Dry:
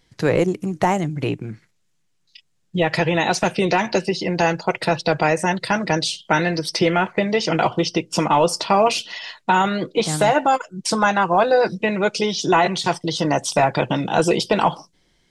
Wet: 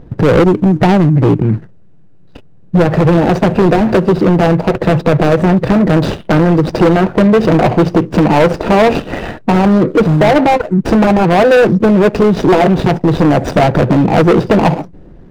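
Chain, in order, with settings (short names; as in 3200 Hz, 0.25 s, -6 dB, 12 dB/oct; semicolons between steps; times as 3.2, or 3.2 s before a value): median filter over 41 samples; LPF 1200 Hz 6 dB/oct; in parallel at -1.5 dB: compressor, threshold -29 dBFS, peak gain reduction 13.5 dB; on the sum: hard clip -19 dBFS, distortion -9 dB; maximiser +27.5 dB; gain -4 dB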